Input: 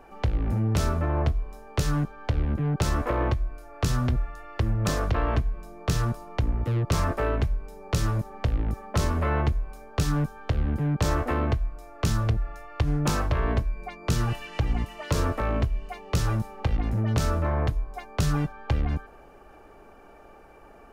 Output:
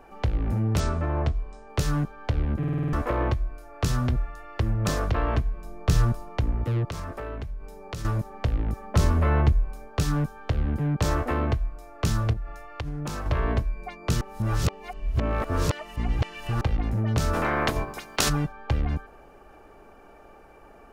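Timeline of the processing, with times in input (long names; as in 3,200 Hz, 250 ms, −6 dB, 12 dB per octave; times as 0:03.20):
0:00.80–0:01.70: elliptic low-pass filter 8,700 Hz
0:02.58: stutter in place 0.05 s, 7 plays
0:05.64–0:06.29: low-shelf EQ 87 Hz +9.5 dB
0:06.87–0:08.05: downward compressor 3 to 1, threshold −33 dBFS
0:08.81–0:09.88: low-shelf EQ 210 Hz +5.5 dB
0:12.33–0:13.26: downward compressor 4 to 1, threshold −29 dBFS
0:14.21–0:16.61: reverse
0:17.33–0:18.28: ceiling on every frequency bin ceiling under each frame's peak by 26 dB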